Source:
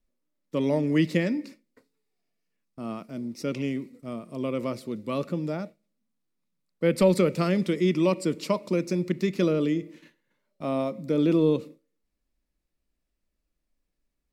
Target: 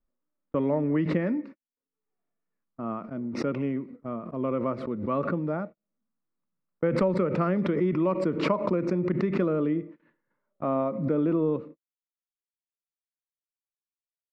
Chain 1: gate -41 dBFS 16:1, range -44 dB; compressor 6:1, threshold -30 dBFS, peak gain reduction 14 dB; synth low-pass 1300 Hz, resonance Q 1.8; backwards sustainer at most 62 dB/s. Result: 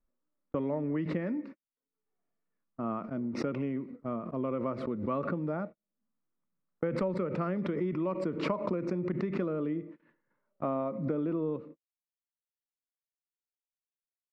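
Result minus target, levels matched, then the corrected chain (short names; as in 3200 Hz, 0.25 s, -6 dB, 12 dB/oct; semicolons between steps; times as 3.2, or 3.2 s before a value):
compressor: peak gain reduction +7 dB
gate -41 dBFS 16:1, range -44 dB; compressor 6:1, threshold -21.5 dBFS, peak gain reduction 7 dB; synth low-pass 1300 Hz, resonance Q 1.8; backwards sustainer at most 62 dB/s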